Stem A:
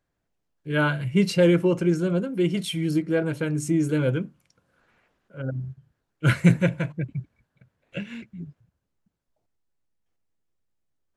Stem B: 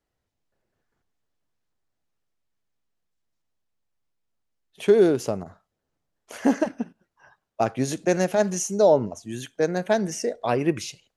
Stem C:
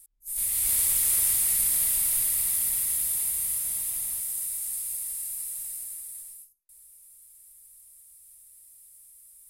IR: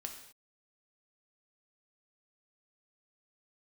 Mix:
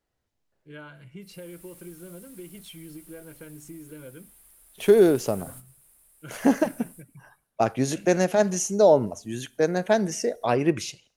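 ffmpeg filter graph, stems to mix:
-filter_complex "[0:a]equalizer=f=110:w=1.5:g=-7.5,acompressor=threshold=0.0501:ratio=6,volume=0.188,asplit=2[s0][s1];[s1]volume=0.2[s2];[1:a]volume=1,asplit=3[s3][s4][s5];[s4]volume=0.0944[s6];[2:a]asubboost=boost=9:cutoff=70,aeval=exprs='(tanh(15.8*val(0)+0.55)-tanh(0.55))/15.8':c=same,adelay=950,volume=0.224,asplit=2[s7][s8];[s8]volume=0.355[s9];[s5]apad=whole_len=460554[s10];[s7][s10]sidechaingate=range=0.0224:threshold=0.00355:ratio=16:detection=peak[s11];[3:a]atrim=start_sample=2205[s12];[s2][s6][s9]amix=inputs=3:normalize=0[s13];[s13][s12]afir=irnorm=-1:irlink=0[s14];[s0][s3][s11][s14]amix=inputs=4:normalize=0"

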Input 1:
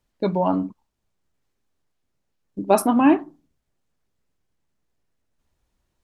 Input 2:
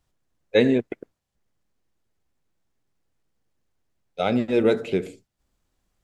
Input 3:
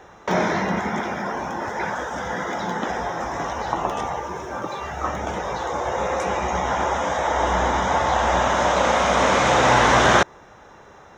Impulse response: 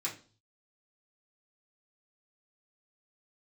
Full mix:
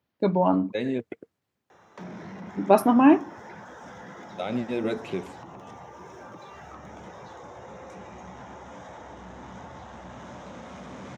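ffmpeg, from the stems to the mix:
-filter_complex "[0:a]equalizer=f=8000:w=1.1:g=-14.5,volume=0.944[s0];[1:a]bandreject=f=460:w=12,alimiter=limit=0.2:level=0:latency=1:release=106,adelay=200,volume=0.596[s1];[2:a]acrossover=split=290[s2][s3];[s3]acompressor=threshold=0.0282:ratio=10[s4];[s2][s4]amix=inputs=2:normalize=0,asoftclip=type=tanh:threshold=0.0531,adelay=1700,volume=0.335[s5];[s0][s1][s5]amix=inputs=3:normalize=0,highpass=f=86:w=0.5412,highpass=f=86:w=1.3066"

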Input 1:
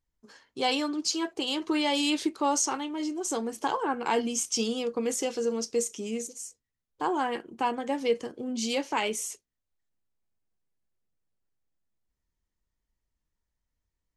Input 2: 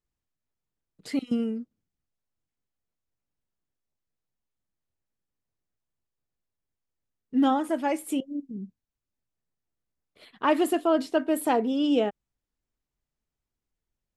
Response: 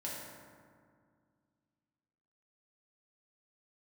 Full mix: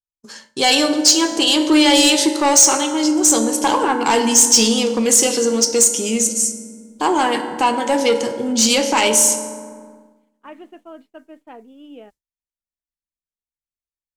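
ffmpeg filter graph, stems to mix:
-filter_complex "[0:a]aeval=exprs='0.224*sin(PI/2*1.41*val(0)/0.224)':c=same,volume=1.26,asplit=2[s0][s1];[s1]volume=0.596[s2];[1:a]lowpass=f=2700:w=0.5412,lowpass=f=2700:w=1.3066,volume=0.15[s3];[2:a]atrim=start_sample=2205[s4];[s2][s4]afir=irnorm=-1:irlink=0[s5];[s0][s3][s5]amix=inputs=3:normalize=0,agate=range=0.0224:threshold=0.01:ratio=3:detection=peak,equalizer=f=8600:w=0.37:g=11.5,asoftclip=type=tanh:threshold=0.631"

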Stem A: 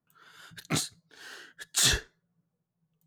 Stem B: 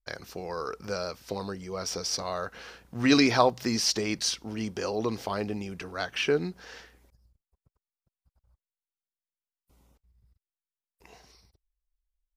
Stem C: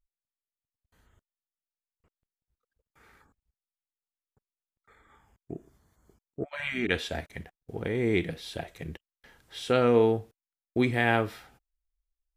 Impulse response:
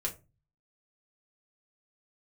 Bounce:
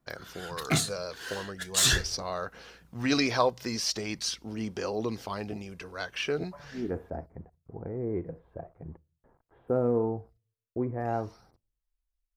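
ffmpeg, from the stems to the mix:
-filter_complex "[0:a]alimiter=limit=0.119:level=0:latency=1:release=260,volume=1.26,asplit=2[s0][s1];[s1]volume=0.562[s2];[1:a]volume=0.631[s3];[2:a]acrusher=bits=8:mix=0:aa=0.000001,lowpass=f=1100:w=0.5412,lowpass=f=1100:w=1.3066,volume=0.531,asplit=2[s4][s5];[s5]volume=0.0944[s6];[3:a]atrim=start_sample=2205[s7];[s2][s6]amix=inputs=2:normalize=0[s8];[s8][s7]afir=irnorm=-1:irlink=0[s9];[s0][s3][s4][s9]amix=inputs=4:normalize=0,aphaser=in_gain=1:out_gain=1:delay=2:decay=0.29:speed=0.42:type=sinusoidal"

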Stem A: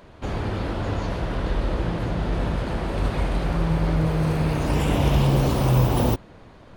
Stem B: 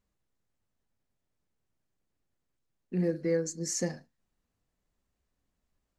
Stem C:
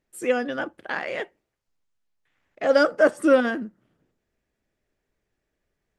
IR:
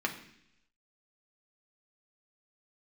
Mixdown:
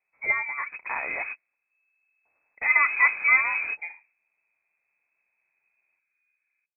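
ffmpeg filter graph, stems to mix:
-filter_complex "[0:a]equalizer=f=680:w=6.9:g=-13.5,adelay=500,volume=0.398[s0];[1:a]volume=0.531[s1];[2:a]volume=0.708,asplit=2[s2][s3];[s3]apad=whole_len=320308[s4];[s0][s4]sidechaingate=range=0.00316:threshold=0.00708:ratio=16:detection=peak[s5];[s5][s1][s2]amix=inputs=3:normalize=0,lowpass=f=2200:t=q:w=0.5098,lowpass=f=2200:t=q:w=0.6013,lowpass=f=2200:t=q:w=0.9,lowpass=f=2200:t=q:w=2.563,afreqshift=-2600"

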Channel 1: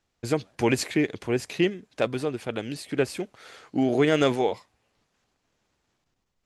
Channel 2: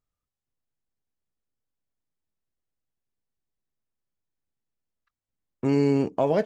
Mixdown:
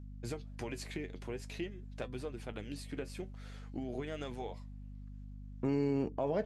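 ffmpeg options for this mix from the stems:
-filter_complex "[0:a]acompressor=threshold=0.0447:ratio=6,flanger=delay=7.9:depth=3.2:regen=60:speed=0.5:shape=sinusoidal,volume=0.668[s0];[1:a]highshelf=f=6300:g=-10,aeval=exprs='val(0)+0.01*(sin(2*PI*50*n/s)+sin(2*PI*2*50*n/s)/2+sin(2*PI*3*50*n/s)/3+sin(2*PI*4*50*n/s)/4+sin(2*PI*5*50*n/s)/5)':c=same,volume=0.501,asplit=2[s1][s2];[s2]apad=whole_len=284635[s3];[s0][s3]sidechaincompress=threshold=0.00501:ratio=8:attack=16:release=699[s4];[s4][s1]amix=inputs=2:normalize=0,alimiter=limit=0.0708:level=0:latency=1:release=140"

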